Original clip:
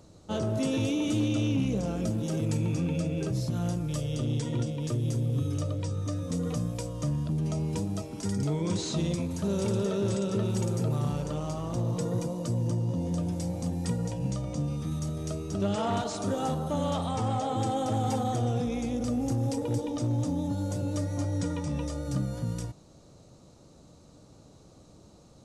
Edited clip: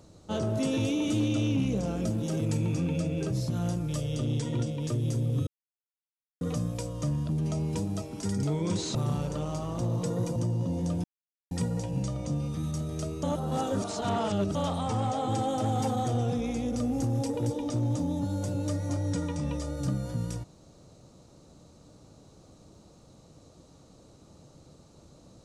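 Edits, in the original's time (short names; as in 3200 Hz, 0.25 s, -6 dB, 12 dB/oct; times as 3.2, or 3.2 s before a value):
5.47–6.41 mute
8.95–10.9 cut
12.31–12.64 cut
13.32–13.79 mute
15.51–16.83 reverse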